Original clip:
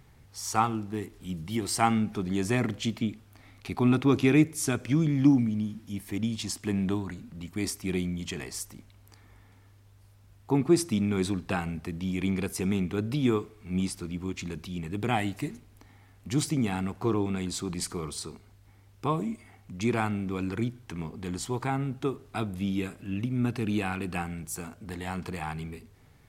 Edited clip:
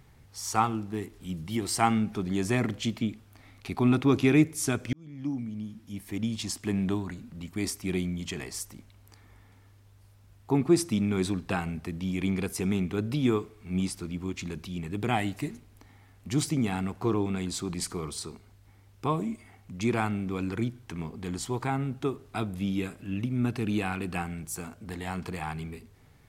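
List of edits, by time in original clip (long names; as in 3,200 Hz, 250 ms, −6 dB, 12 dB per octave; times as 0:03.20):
0:04.93–0:06.36: fade in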